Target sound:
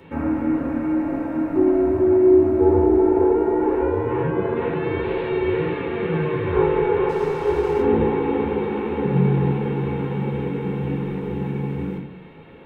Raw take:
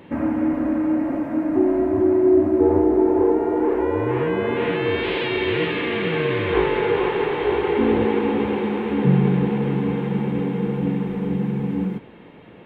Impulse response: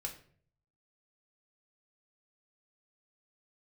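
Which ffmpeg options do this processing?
-filter_complex "[0:a]acrossover=split=110|1500[link_01][link_02][link_03];[link_03]acompressor=threshold=-43dB:ratio=6[link_04];[link_01][link_02][link_04]amix=inputs=3:normalize=0,asettb=1/sr,asplit=3[link_05][link_06][link_07];[link_05]atrim=end=7.094[link_08];[link_06]atrim=start=7.09:end=7.82,asetpts=PTS-STARTPTS,afade=type=in:duration=0.004:curve=qsin,afade=type=out:start_time=0.726:duration=0.004:curve=qsin,aeval=exprs='sgn(val(0))*max(abs(val(0))-0.0119,0)':channel_layout=same[link_09];[link_07]atrim=start=7.816[link_10];[link_08][link_09]acrossfade=duration=0.004:curve1=hsin:curve2=qsin[link_11];[link_11][link_10]acrossfade=duration=0.004:curve1=qsin:curve2=hsin[link_12];[1:a]atrim=start_sample=2205[link_13];[link_12][link_13]afir=irnorm=-1:irlink=0,volume=1.5dB"

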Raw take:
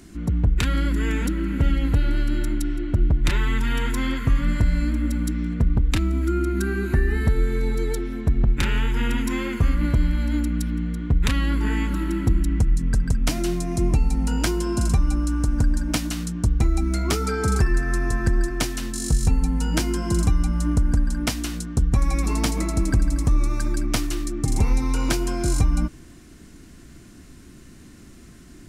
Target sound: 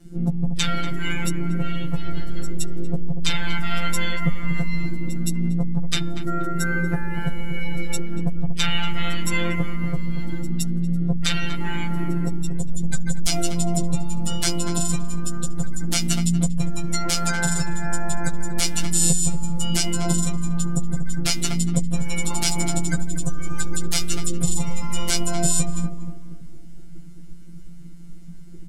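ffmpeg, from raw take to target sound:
ffmpeg -i in.wav -filter_complex "[0:a]afftdn=noise_reduction=22:noise_floor=-32,highshelf=frequency=5600:gain=5,bandreject=frequency=299.2:width_type=h:width=4,bandreject=frequency=598.4:width_type=h:width=4,bandreject=frequency=897.6:width_type=h:width=4,bandreject=frequency=1196.8:width_type=h:width=4,bandreject=frequency=1496:width_type=h:width=4,bandreject=frequency=1795.2:width_type=h:width=4,bandreject=frequency=2094.4:width_type=h:width=4,bandreject=frequency=2393.6:width_type=h:width=4,bandreject=frequency=2692.8:width_type=h:width=4,bandreject=frequency=2992:width_type=h:width=4,bandreject=frequency=3291.2:width_type=h:width=4,bandreject=frequency=3590.4:width_type=h:width=4,bandreject=frequency=3889.6:width_type=h:width=4,acrossover=split=2900[link_01][link_02];[link_01]acompressor=threshold=-30dB:ratio=16[link_03];[link_03][link_02]amix=inputs=2:normalize=0,asplit=4[link_04][link_05][link_06][link_07];[link_05]asetrate=22050,aresample=44100,atempo=2,volume=-11dB[link_08];[link_06]asetrate=35002,aresample=44100,atempo=1.25992,volume=-16dB[link_09];[link_07]asetrate=58866,aresample=44100,atempo=0.749154,volume=-11dB[link_10];[link_04][link_08][link_09][link_10]amix=inputs=4:normalize=0,afftfilt=real='hypot(re,im)*cos(PI*b)':imag='0':win_size=1024:overlap=0.75,asplit=2[link_11][link_12];[link_12]adelay=13,volume=-4dB[link_13];[link_11][link_13]amix=inputs=2:normalize=0,asplit=2[link_14][link_15];[link_15]adelay=237,lowpass=frequency=1200:poles=1,volume=-8.5dB,asplit=2[link_16][link_17];[link_17]adelay=237,lowpass=frequency=1200:poles=1,volume=0.49,asplit=2[link_18][link_19];[link_19]adelay=237,lowpass=frequency=1200:poles=1,volume=0.49,asplit=2[link_20][link_21];[link_21]adelay=237,lowpass=frequency=1200:poles=1,volume=0.49,asplit=2[link_22][link_23];[link_23]adelay=237,lowpass=frequency=1200:poles=1,volume=0.49,asplit=2[link_24][link_25];[link_25]adelay=237,lowpass=frequency=1200:poles=1,volume=0.49[link_26];[link_16][link_18][link_20][link_22][link_24][link_26]amix=inputs=6:normalize=0[link_27];[link_14][link_27]amix=inputs=2:normalize=0,alimiter=level_in=13.5dB:limit=-1dB:release=50:level=0:latency=1" -ar 48000 -c:a libvorbis -b:a 96k out.ogg

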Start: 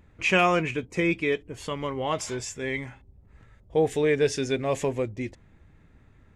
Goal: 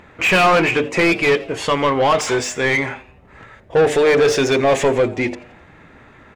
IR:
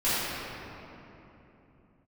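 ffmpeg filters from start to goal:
-filter_complex "[0:a]bandreject=frequency=50:width_type=h:width=6,bandreject=frequency=100:width_type=h:width=6,bandreject=frequency=150:width_type=h:width=6,bandreject=frequency=200:width_type=h:width=6,bandreject=frequency=250:width_type=h:width=6,bandreject=frequency=300:width_type=h:width=6,bandreject=frequency=350:width_type=h:width=6,bandreject=frequency=400:width_type=h:width=6,bandreject=frequency=450:width_type=h:width=6,asplit=2[link_01][link_02];[link_02]highpass=frequency=720:poles=1,volume=25dB,asoftclip=type=tanh:threshold=-9.5dB[link_03];[link_01][link_03]amix=inputs=2:normalize=0,lowpass=frequency=2000:poles=1,volume=-6dB,asplit=5[link_04][link_05][link_06][link_07][link_08];[link_05]adelay=85,afreqshift=120,volume=-20dB[link_09];[link_06]adelay=170,afreqshift=240,volume=-26.6dB[link_10];[link_07]adelay=255,afreqshift=360,volume=-33.1dB[link_11];[link_08]adelay=340,afreqshift=480,volume=-39.7dB[link_12];[link_04][link_09][link_10][link_11][link_12]amix=inputs=5:normalize=0,volume=4dB"

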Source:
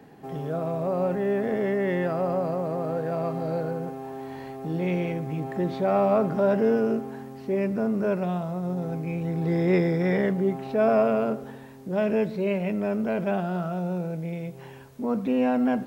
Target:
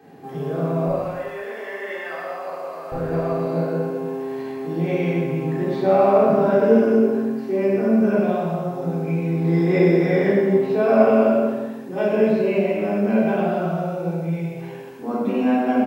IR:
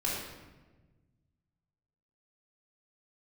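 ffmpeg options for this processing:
-filter_complex "[0:a]asetnsamples=nb_out_samples=441:pad=0,asendcmd='0.88 highpass f 1000;2.92 highpass f 180',highpass=140,aecho=1:1:122.4|259.5:0.355|0.251[link_01];[1:a]atrim=start_sample=2205,afade=type=out:start_time=0.38:duration=0.01,atrim=end_sample=17199[link_02];[link_01][link_02]afir=irnorm=-1:irlink=0,volume=-1.5dB"

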